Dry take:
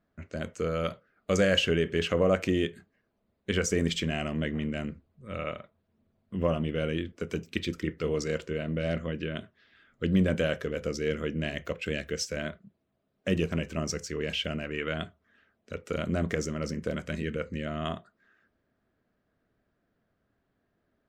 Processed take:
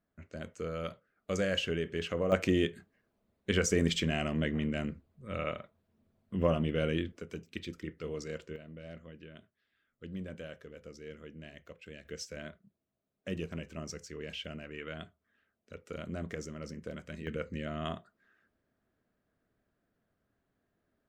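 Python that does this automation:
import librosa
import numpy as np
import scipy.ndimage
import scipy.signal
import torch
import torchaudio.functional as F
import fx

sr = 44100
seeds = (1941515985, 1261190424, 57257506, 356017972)

y = fx.gain(x, sr, db=fx.steps((0.0, -7.5), (2.32, -1.0), (7.2, -9.5), (8.56, -17.0), (12.05, -10.0), (17.27, -4.0)))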